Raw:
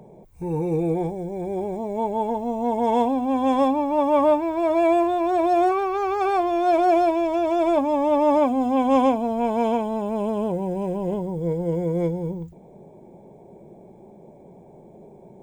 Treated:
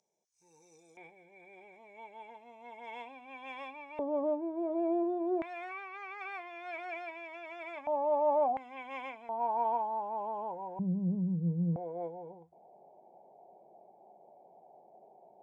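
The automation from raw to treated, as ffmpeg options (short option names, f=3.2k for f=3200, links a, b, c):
-af "asetnsamples=n=441:p=0,asendcmd='0.97 bandpass f 2300;3.99 bandpass f 420;5.42 bandpass f 2100;7.87 bandpass f 730;8.57 bandpass f 2100;9.29 bandpass f 880;10.79 bandpass f 180;11.76 bandpass f 740',bandpass=f=5.9k:t=q:w=6.2:csg=0"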